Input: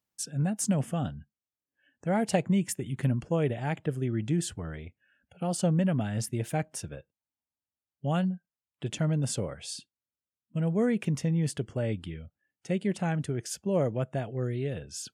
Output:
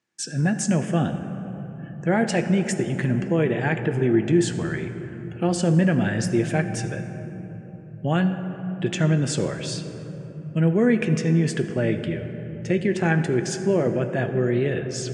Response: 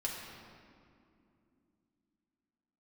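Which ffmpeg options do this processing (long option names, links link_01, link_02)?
-filter_complex "[0:a]alimiter=limit=-21.5dB:level=0:latency=1,highpass=110,equalizer=frequency=220:width_type=q:width=4:gain=3,equalizer=frequency=360:width_type=q:width=4:gain=9,equalizer=frequency=1700:width_type=q:width=4:gain=10,equalizer=frequency=2400:width_type=q:width=4:gain=4,lowpass=frequency=8000:width=0.5412,lowpass=frequency=8000:width=1.3066,asplit=2[link_01][link_02];[1:a]atrim=start_sample=2205,asetrate=23814,aresample=44100[link_03];[link_02][link_03]afir=irnorm=-1:irlink=0,volume=-9dB[link_04];[link_01][link_04]amix=inputs=2:normalize=0,volume=3.5dB"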